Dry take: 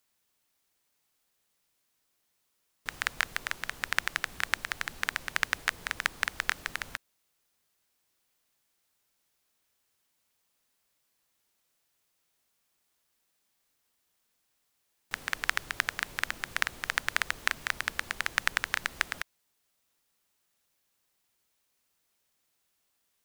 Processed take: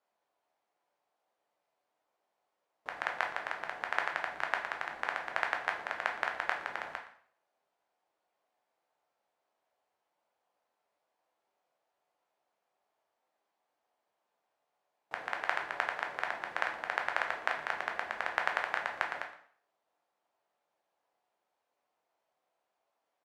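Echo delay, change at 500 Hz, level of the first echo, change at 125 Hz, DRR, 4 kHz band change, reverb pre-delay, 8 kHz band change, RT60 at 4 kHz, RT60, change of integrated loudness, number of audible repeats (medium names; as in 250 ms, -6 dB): 117 ms, +7.0 dB, -17.0 dB, under -10 dB, 2.0 dB, -10.0 dB, 5 ms, -18.0 dB, 0.50 s, 0.55 s, -3.5 dB, 1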